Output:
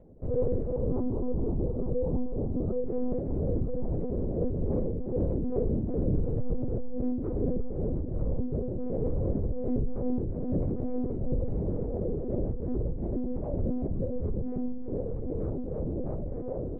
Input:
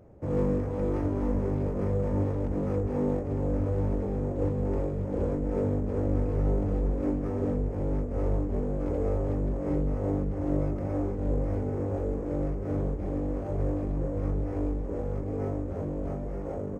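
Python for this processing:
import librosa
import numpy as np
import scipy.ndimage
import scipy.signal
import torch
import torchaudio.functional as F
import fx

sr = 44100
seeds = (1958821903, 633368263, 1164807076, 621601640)

y = fx.spec_expand(x, sr, power=1.5)
y = fx.lowpass(y, sr, hz=1200.0, slope=24, at=(0.76, 2.87))
y = fx.echo_feedback(y, sr, ms=349, feedback_pct=24, wet_db=-10)
y = fx.lpc_monotone(y, sr, seeds[0], pitch_hz=250.0, order=8)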